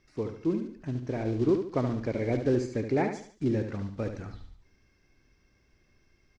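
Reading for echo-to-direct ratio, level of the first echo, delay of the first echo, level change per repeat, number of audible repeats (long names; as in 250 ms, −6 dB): −7.0 dB, −7.5 dB, 72 ms, −8.5 dB, 4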